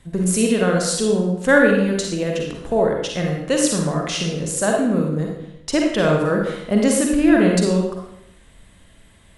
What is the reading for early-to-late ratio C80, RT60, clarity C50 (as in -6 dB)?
5.0 dB, 0.80 s, 1.5 dB